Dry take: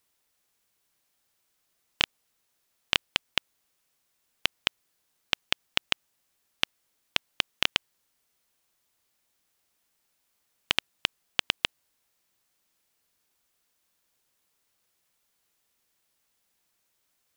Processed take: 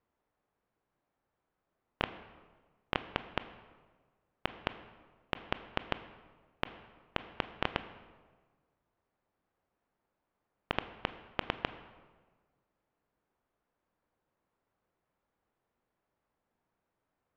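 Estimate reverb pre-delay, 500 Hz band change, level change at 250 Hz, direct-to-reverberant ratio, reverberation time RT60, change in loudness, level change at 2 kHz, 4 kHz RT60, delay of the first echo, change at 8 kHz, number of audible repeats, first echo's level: 19 ms, +2.5 dB, +3.0 dB, 11.0 dB, 1.4 s, −10.0 dB, −9.0 dB, 0.95 s, no echo audible, below −25 dB, no echo audible, no echo audible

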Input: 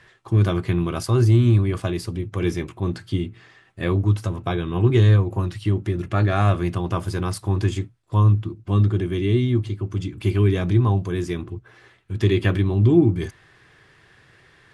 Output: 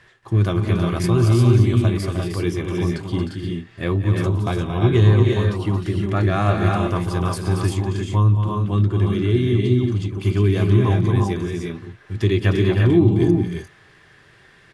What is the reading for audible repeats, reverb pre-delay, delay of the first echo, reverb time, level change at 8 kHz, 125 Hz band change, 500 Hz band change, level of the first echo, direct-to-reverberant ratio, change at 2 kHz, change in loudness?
4, no reverb audible, 179 ms, no reverb audible, can't be measured, +2.0 dB, +3.0 dB, −16.5 dB, no reverb audible, +3.0 dB, +2.0 dB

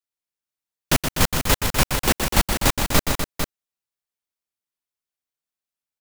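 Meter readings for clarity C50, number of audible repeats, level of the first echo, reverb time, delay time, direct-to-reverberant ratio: no reverb audible, 3, −7.0 dB, no reverb audible, 122 ms, no reverb audible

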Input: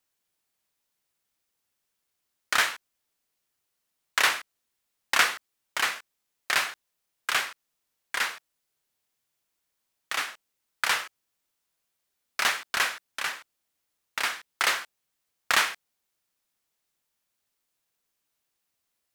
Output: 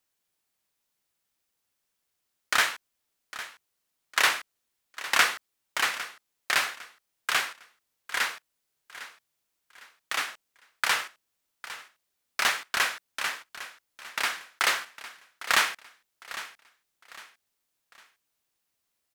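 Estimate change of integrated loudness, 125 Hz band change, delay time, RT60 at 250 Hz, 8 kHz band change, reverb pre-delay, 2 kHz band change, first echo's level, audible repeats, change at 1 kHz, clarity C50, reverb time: −0.5 dB, can't be measured, 805 ms, no reverb audible, 0.0 dB, no reverb audible, 0.0 dB, −15.0 dB, 3, 0.0 dB, no reverb audible, no reverb audible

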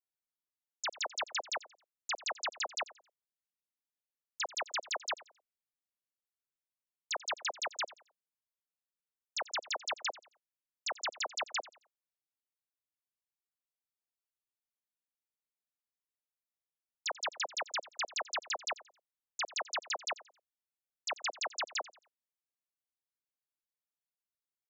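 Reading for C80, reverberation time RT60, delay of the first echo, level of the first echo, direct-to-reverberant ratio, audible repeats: no reverb audible, no reverb audible, 89 ms, −19.0 dB, no reverb audible, 2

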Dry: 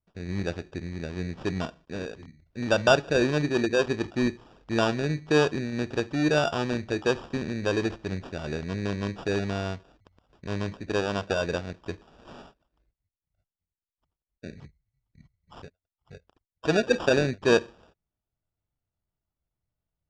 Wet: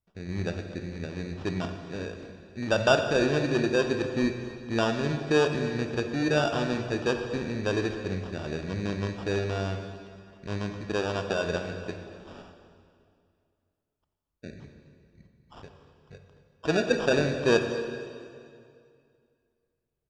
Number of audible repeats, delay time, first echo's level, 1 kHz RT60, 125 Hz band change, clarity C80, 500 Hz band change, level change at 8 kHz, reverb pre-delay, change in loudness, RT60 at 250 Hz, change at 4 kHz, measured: 1, 233 ms, −18.0 dB, 2.3 s, −0.5 dB, 7.5 dB, −0.5 dB, −1.0 dB, 14 ms, −1.0 dB, 2.4 s, −1.0 dB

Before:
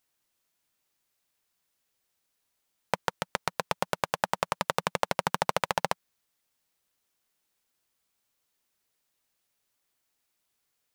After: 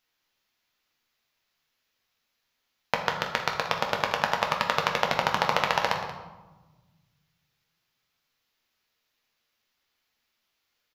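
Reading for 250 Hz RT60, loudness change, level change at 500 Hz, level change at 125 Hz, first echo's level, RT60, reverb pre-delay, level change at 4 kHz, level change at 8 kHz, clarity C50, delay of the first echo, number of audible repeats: 1.9 s, +4.5 dB, +2.5 dB, +2.0 dB, −14.5 dB, 1.2 s, 8 ms, +6.0 dB, −2.0 dB, 6.0 dB, 181 ms, 1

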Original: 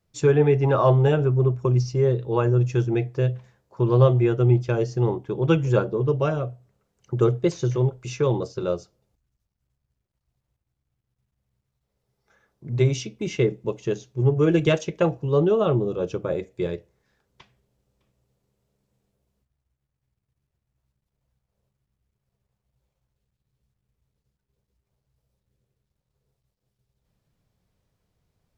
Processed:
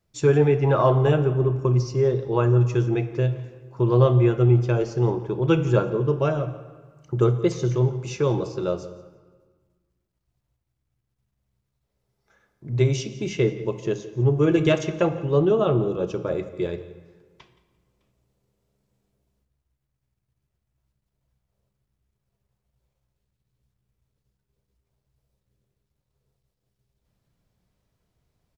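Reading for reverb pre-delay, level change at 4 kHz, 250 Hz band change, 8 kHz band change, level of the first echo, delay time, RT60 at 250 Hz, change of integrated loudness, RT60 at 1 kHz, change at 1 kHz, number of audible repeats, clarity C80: 3 ms, +0.5 dB, +1.0 dB, can't be measured, −19.0 dB, 172 ms, 1.8 s, 0.0 dB, 1.5 s, +0.5 dB, 1, 13.0 dB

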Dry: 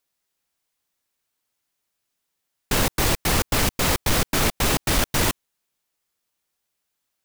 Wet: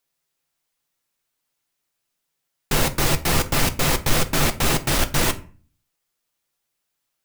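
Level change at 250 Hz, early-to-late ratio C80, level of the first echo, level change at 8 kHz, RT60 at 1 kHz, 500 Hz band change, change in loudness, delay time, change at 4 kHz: +1.0 dB, 22.0 dB, no echo audible, +0.5 dB, 0.40 s, +1.0 dB, +1.0 dB, no echo audible, +0.5 dB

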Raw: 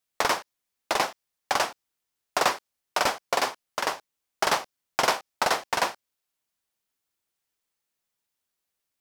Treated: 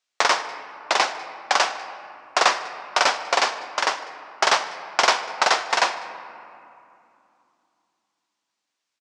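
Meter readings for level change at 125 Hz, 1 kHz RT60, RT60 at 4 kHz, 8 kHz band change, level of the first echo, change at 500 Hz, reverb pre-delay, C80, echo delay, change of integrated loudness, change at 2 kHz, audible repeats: can't be measured, 2.7 s, 1.4 s, +4.5 dB, −23.5 dB, +3.0 dB, 3 ms, 12.0 dB, 197 ms, +5.5 dB, +6.5 dB, 1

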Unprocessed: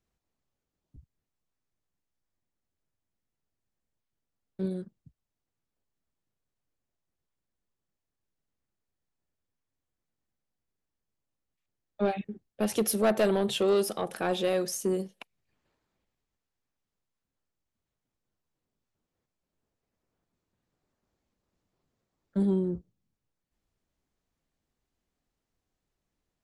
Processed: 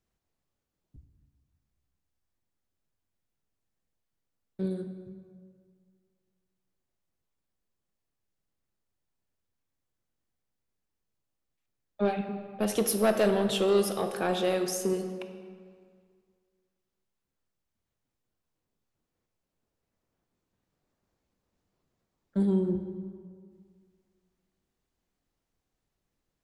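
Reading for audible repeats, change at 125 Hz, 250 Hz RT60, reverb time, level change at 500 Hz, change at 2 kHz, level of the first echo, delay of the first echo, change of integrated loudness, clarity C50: no echo audible, +1.0 dB, 2.0 s, 2.0 s, +0.5 dB, +1.0 dB, no echo audible, no echo audible, +0.5 dB, 8.0 dB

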